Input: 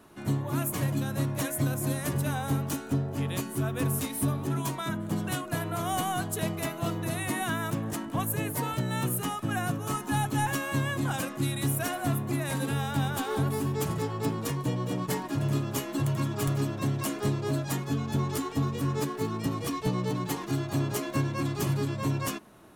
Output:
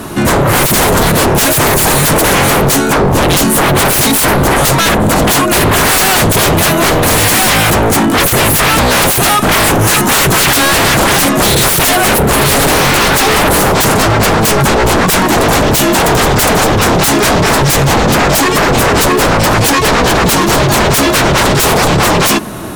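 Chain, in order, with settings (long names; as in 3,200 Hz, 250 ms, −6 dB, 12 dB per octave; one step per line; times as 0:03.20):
bass and treble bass +3 dB, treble +3 dB
sine wavefolder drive 19 dB, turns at −13.5 dBFS
level +7.5 dB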